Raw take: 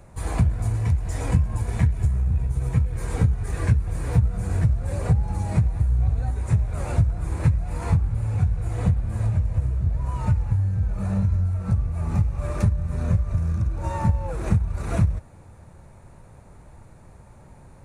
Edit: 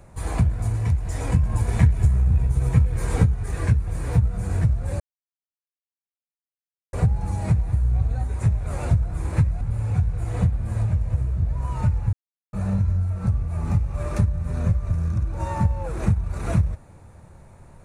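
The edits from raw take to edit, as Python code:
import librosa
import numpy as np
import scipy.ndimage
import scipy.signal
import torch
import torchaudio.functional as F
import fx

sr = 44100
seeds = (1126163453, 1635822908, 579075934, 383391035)

y = fx.edit(x, sr, fx.clip_gain(start_s=1.43, length_s=1.81, db=3.5),
    fx.insert_silence(at_s=5.0, length_s=1.93),
    fx.cut(start_s=7.68, length_s=0.37),
    fx.silence(start_s=10.57, length_s=0.4), tone=tone)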